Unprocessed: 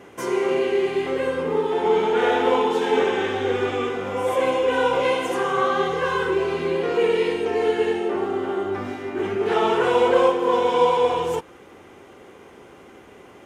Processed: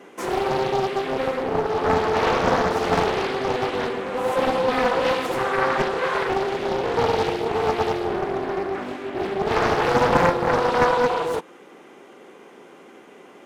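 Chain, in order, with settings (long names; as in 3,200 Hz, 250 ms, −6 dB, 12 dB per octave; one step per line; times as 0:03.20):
high-pass filter 170 Hz 24 dB per octave
highs frequency-modulated by the lows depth 0.88 ms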